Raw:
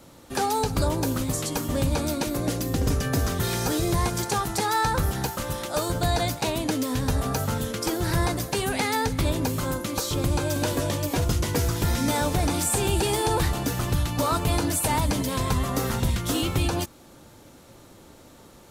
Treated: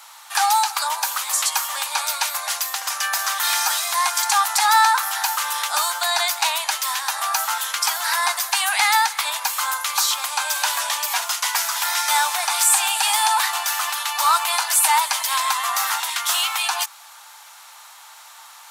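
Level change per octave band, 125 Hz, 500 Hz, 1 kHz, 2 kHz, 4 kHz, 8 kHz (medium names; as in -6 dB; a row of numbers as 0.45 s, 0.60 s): under -40 dB, -10.5 dB, +9.0 dB, +10.5 dB, +10.5 dB, +10.0 dB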